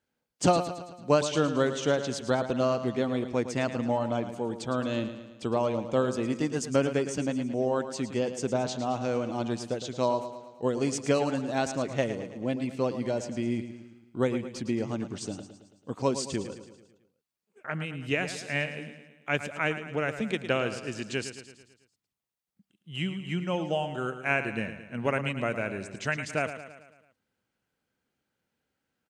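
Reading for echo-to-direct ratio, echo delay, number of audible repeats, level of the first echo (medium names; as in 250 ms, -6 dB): -9.5 dB, 110 ms, 5, -11.0 dB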